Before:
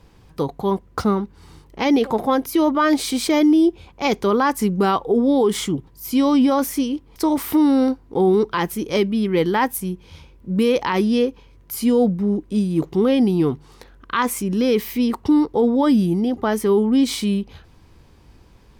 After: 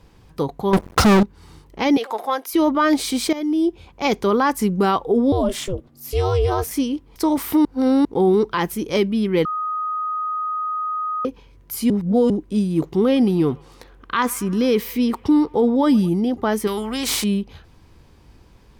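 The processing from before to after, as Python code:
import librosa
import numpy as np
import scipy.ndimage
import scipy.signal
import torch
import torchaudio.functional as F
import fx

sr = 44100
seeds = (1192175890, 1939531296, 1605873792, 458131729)

y = fx.leveller(x, sr, passes=5, at=(0.73, 1.23))
y = fx.highpass(y, sr, hz=660.0, slope=12, at=(1.97, 2.54))
y = fx.ring_mod(y, sr, carrier_hz=190.0, at=(5.32, 6.71))
y = fx.echo_wet_bandpass(y, sr, ms=111, feedback_pct=70, hz=1300.0, wet_db=-21, at=(12.94, 16.09))
y = fx.spectral_comp(y, sr, ratio=2.0, at=(16.67, 17.24))
y = fx.edit(y, sr, fx.fade_in_from(start_s=3.33, length_s=0.73, curve='qsin', floor_db=-16.0),
    fx.reverse_span(start_s=7.65, length_s=0.4),
    fx.bleep(start_s=9.45, length_s=1.8, hz=1250.0, db=-21.5),
    fx.reverse_span(start_s=11.9, length_s=0.4), tone=tone)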